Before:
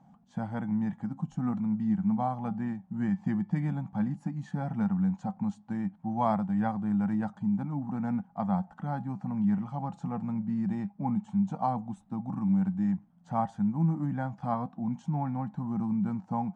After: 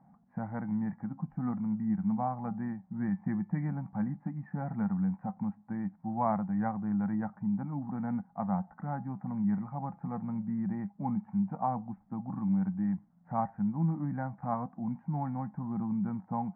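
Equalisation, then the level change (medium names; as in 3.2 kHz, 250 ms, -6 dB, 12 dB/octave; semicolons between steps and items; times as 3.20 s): elliptic low-pass 2.1 kHz, stop band 40 dB; -2.0 dB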